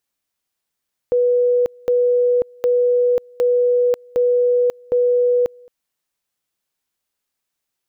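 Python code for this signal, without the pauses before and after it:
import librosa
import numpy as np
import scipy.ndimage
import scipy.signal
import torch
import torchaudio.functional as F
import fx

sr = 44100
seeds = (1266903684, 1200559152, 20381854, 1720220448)

y = fx.two_level_tone(sr, hz=490.0, level_db=-12.5, drop_db=28.5, high_s=0.54, low_s=0.22, rounds=6)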